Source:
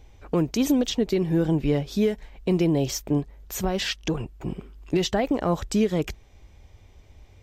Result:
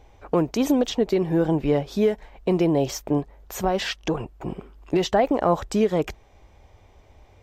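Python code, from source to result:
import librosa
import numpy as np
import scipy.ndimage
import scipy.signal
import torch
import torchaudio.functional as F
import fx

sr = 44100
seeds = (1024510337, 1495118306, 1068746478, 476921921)

y = fx.peak_eq(x, sr, hz=790.0, db=10.0, octaves=2.3)
y = F.gain(torch.from_numpy(y), -3.0).numpy()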